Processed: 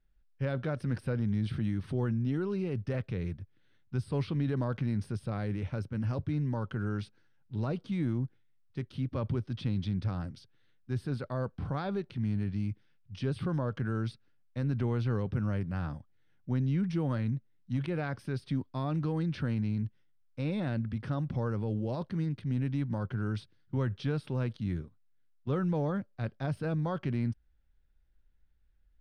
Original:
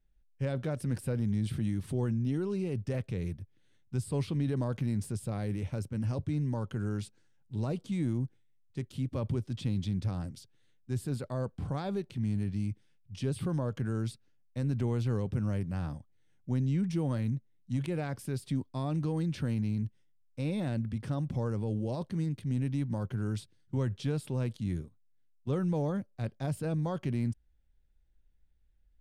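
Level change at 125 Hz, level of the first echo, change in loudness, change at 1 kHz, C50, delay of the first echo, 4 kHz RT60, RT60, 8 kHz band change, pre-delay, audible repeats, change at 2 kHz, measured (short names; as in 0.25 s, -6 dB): 0.0 dB, none, 0.0 dB, +2.5 dB, none, none, none, none, under -10 dB, none, none, +4.0 dB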